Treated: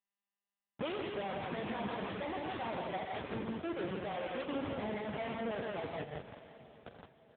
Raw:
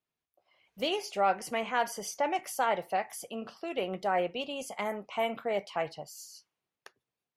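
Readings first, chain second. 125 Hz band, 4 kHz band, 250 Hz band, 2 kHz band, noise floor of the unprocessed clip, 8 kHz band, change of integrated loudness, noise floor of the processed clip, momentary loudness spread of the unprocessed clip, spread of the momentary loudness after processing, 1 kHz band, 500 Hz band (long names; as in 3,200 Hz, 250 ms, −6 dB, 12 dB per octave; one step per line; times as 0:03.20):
+4.5 dB, −8.5 dB, +0.5 dB, −7.0 dB, below −85 dBFS, below −40 dB, −7.0 dB, below −85 dBFS, 11 LU, 15 LU, −9.5 dB, −6.5 dB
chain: comparator with hysteresis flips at −37 dBFS
low-shelf EQ 150 Hz −3 dB
loudspeakers that aren't time-aligned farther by 16 metres −12 dB, 28 metres −10 dB, 42 metres −7 dB, 57 metres −3 dB
downward compressor 3 to 1, threshold −44 dBFS, peak gain reduction 11.5 dB
feedback delay with all-pass diffusion 549 ms, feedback 44%, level −15 dB
level +7 dB
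AMR narrowband 6.7 kbit/s 8,000 Hz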